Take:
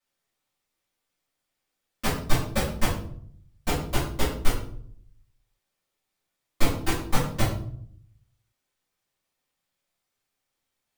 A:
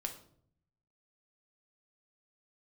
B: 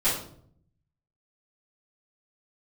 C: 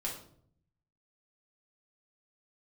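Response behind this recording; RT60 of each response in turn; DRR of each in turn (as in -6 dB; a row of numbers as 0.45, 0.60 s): B; 0.60, 0.60, 0.60 s; 3.5, -13.5, -3.5 dB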